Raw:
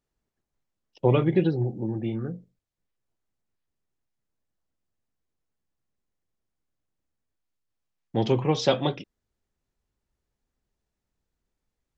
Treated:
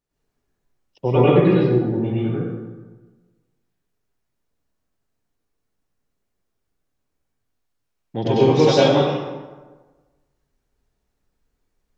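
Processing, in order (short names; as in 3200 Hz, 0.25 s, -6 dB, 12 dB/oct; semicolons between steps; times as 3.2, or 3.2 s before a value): plate-style reverb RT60 1.3 s, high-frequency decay 0.6×, pre-delay 85 ms, DRR -9.5 dB; gain -1.5 dB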